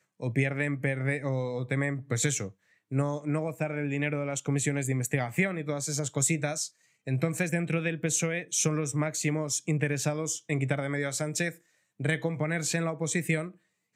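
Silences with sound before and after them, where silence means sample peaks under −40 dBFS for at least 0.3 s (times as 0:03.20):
0:02.49–0:02.92
0:06.67–0:07.07
0:11.52–0:12.00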